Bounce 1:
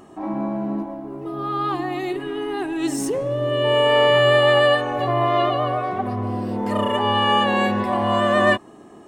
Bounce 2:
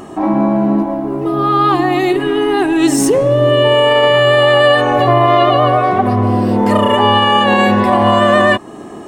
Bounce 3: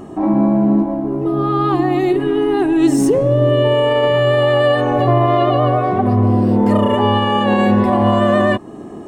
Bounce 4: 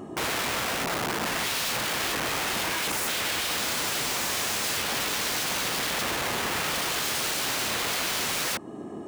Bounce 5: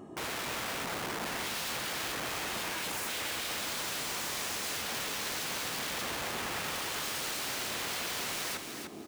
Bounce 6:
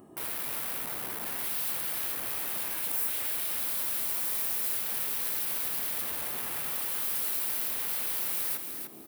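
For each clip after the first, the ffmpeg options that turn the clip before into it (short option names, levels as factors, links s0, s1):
-filter_complex "[0:a]asplit=2[s0][s1];[s1]acompressor=threshold=0.0447:ratio=6,volume=0.794[s2];[s0][s2]amix=inputs=2:normalize=0,alimiter=level_in=3.16:limit=0.891:release=50:level=0:latency=1,volume=0.891"
-af "tiltshelf=f=660:g=5.5,volume=0.631"
-af "aeval=exprs='(mod(7.94*val(0)+1,2)-1)/7.94':c=same,highpass=f=100:p=1,volume=0.531"
-af "aecho=1:1:300|600|900:0.473|0.118|0.0296,volume=0.376"
-af "aexciter=amount=7.4:drive=3.2:freq=9300,volume=0.531"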